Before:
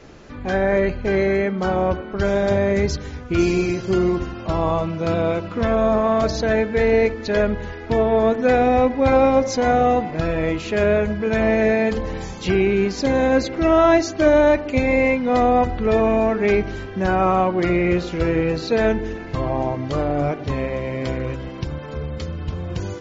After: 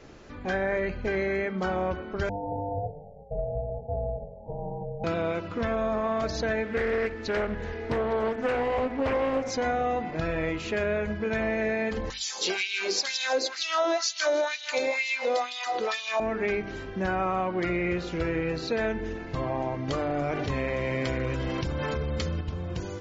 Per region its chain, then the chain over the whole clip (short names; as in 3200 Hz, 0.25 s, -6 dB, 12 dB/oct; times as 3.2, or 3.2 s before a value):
2.29–5.04 Chebyshev band-pass 120–570 Hz, order 5 + air absorption 450 m + ring modulator 300 Hz
6.65–9.51 echo 0.859 s -17.5 dB + Doppler distortion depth 0.58 ms
12.1–16.2 resonant high shelf 3100 Hz +11.5 dB, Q 1.5 + split-band echo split 450 Hz, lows 86 ms, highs 0.158 s, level -12.5 dB + LFO high-pass sine 2.1 Hz 390–3400 Hz
19.88–22.41 high shelf 5600 Hz +6.5 dB + fast leveller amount 70%
whole clip: notches 50/100/150/200/250 Hz; dynamic EQ 1900 Hz, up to +5 dB, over -33 dBFS, Q 0.87; compressor 3:1, threshold -21 dBFS; gain -5 dB